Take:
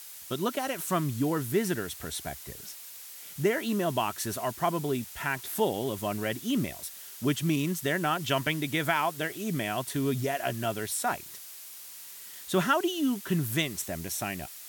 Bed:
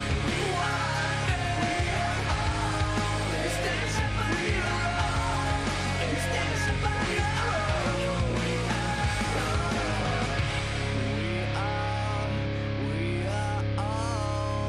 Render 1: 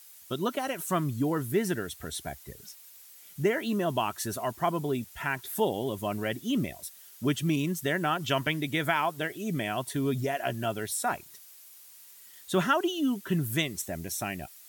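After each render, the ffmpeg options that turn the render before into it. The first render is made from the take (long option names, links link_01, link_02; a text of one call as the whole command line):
ffmpeg -i in.wav -af "afftdn=noise_reduction=9:noise_floor=-45" out.wav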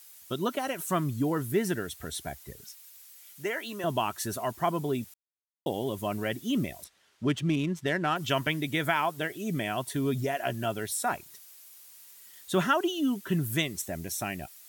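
ffmpeg -i in.wav -filter_complex "[0:a]asettb=1/sr,asplit=3[link_01][link_02][link_03];[link_01]atrim=end=2.644[link_04];[link_02]atrim=start=2.64:end=3.84,asetpts=PTS-STARTPTS,afade=type=in:duration=0.004:curve=qsin,afade=type=out:start_time=1.196:duration=0.004:curve=qsin,highpass=frequency=850:poles=1[link_05];[link_03]atrim=start=3.836[link_06];[link_04][link_05]acrossfade=duration=0.004:curve1=hsin:curve2=qsin[link_07];[link_07][link_06]acrossfade=duration=0.004:curve1=qsin:curve2=hsin,asettb=1/sr,asplit=3[link_08][link_09][link_10];[link_08]atrim=end=6.844[link_11];[link_09]atrim=start=6.84:end=8.16,asetpts=PTS-STARTPTS,afade=type=in:duration=0.004:curve=qsin,afade=type=out:start_time=1.316:duration=0.004:curve=qsin,adynamicsmooth=sensitivity=7.5:basefreq=3200[link_12];[link_10]atrim=start=8.156[link_13];[link_11][link_12]acrossfade=duration=0.004:curve1=hsin:curve2=qsin[link_14];[link_14][link_13]acrossfade=duration=0.004:curve1=qsin:curve2=hsin,asplit=3[link_15][link_16][link_17];[link_15]atrim=end=5.14,asetpts=PTS-STARTPTS,afade=type=out:start_time=5.136:duration=0.004:curve=hsin[link_18];[link_16]atrim=start=5.14:end=5.66,asetpts=PTS-STARTPTS,volume=0[link_19];[link_17]atrim=start=5.66,asetpts=PTS-STARTPTS,afade=type=in:duration=0.004:curve=hsin[link_20];[link_18][link_19][link_20]concat=n=3:v=0:a=1" out.wav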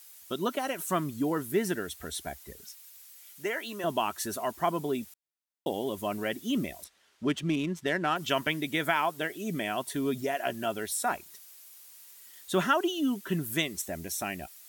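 ffmpeg -i in.wav -af "equalizer=frequency=120:width=2.5:gain=-12.5" out.wav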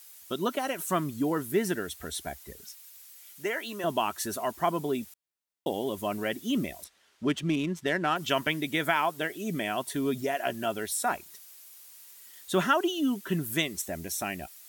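ffmpeg -i in.wav -af "volume=1dB" out.wav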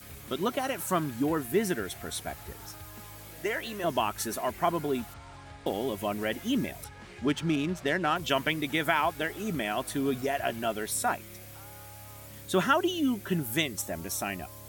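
ffmpeg -i in.wav -i bed.wav -filter_complex "[1:a]volume=-20dB[link_01];[0:a][link_01]amix=inputs=2:normalize=0" out.wav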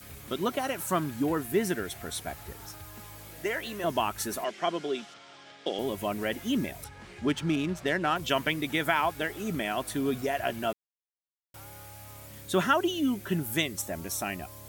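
ffmpeg -i in.wav -filter_complex "[0:a]asettb=1/sr,asplit=3[link_01][link_02][link_03];[link_01]atrim=end=4.444[link_04];[link_02]atrim=start=4.44:end=5.79,asetpts=PTS-STARTPTS,afade=type=in:duration=0.004:curve=qsin,afade=type=out:start_time=1.346:duration=0.004:curve=qsin,highpass=frequency=200:width=0.5412,highpass=frequency=200:width=1.3066,equalizer=frequency=250:width_type=q:width=4:gain=-8,equalizer=frequency=930:width_type=q:width=4:gain=-9,equalizer=frequency=3200:width_type=q:width=4:gain=8,equalizer=frequency=5400:width_type=q:width=4:gain=5,lowpass=frequency=7400:width=0.5412,lowpass=frequency=7400:width=1.3066[link_05];[link_03]atrim=start=5.786[link_06];[link_04][link_05]acrossfade=duration=0.004:curve1=hsin:curve2=qsin[link_07];[link_07][link_06]acrossfade=duration=0.004:curve1=qsin:curve2=hsin,asplit=3[link_08][link_09][link_10];[link_08]atrim=end=10.73,asetpts=PTS-STARTPTS,afade=type=out:start_time=10.726:duration=0.004:curve=hsin[link_11];[link_09]atrim=start=10.73:end=11.54,asetpts=PTS-STARTPTS,volume=0[link_12];[link_10]atrim=start=11.54,asetpts=PTS-STARTPTS,afade=type=in:duration=0.004:curve=hsin[link_13];[link_11][link_12][link_13]concat=n=3:v=0:a=1" out.wav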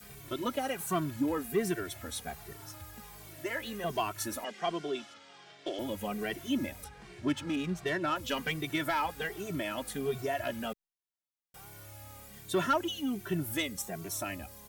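ffmpeg -i in.wav -filter_complex "[0:a]asoftclip=type=tanh:threshold=-18.5dB,asplit=2[link_01][link_02];[link_02]adelay=2.1,afreqshift=-1.3[link_03];[link_01][link_03]amix=inputs=2:normalize=1" out.wav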